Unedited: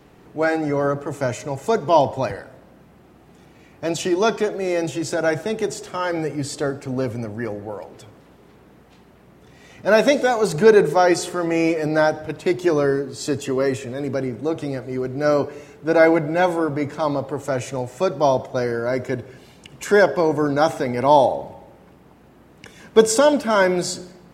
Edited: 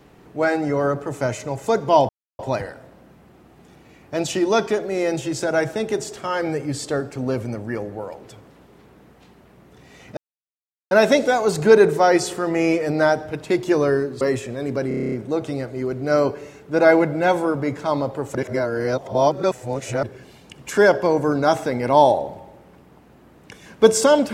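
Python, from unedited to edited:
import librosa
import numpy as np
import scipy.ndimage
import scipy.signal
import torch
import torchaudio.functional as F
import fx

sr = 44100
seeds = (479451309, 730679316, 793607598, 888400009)

y = fx.edit(x, sr, fx.insert_silence(at_s=2.09, length_s=0.3),
    fx.insert_silence(at_s=9.87, length_s=0.74),
    fx.cut(start_s=13.17, length_s=0.42),
    fx.stutter(start_s=14.26, slice_s=0.03, count=9),
    fx.reverse_span(start_s=17.49, length_s=1.68), tone=tone)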